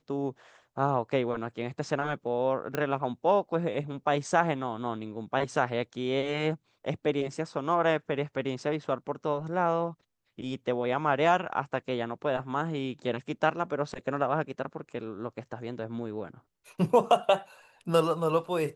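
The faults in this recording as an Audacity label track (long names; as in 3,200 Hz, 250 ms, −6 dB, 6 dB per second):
2.750000	2.750000	click −16 dBFS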